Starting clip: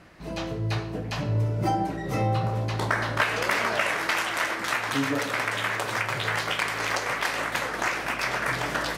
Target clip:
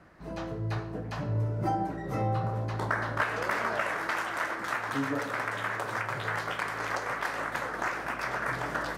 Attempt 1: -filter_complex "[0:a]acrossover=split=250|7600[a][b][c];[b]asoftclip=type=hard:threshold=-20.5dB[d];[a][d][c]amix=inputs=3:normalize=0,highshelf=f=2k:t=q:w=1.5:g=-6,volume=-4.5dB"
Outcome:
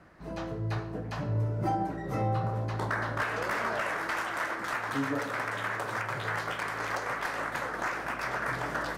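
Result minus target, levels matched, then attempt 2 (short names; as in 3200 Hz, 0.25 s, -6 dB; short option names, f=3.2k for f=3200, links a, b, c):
hard clip: distortion +15 dB
-filter_complex "[0:a]acrossover=split=250|7600[a][b][c];[b]asoftclip=type=hard:threshold=-12.5dB[d];[a][d][c]amix=inputs=3:normalize=0,highshelf=f=2k:t=q:w=1.5:g=-6,volume=-4.5dB"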